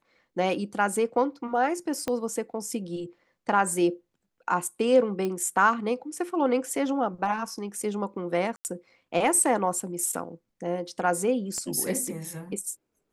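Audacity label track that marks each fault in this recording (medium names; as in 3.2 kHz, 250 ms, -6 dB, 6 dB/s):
2.080000	2.080000	pop -15 dBFS
5.250000	5.250000	pop -18 dBFS
8.560000	8.650000	dropout 89 ms
11.580000	11.580000	pop -22 dBFS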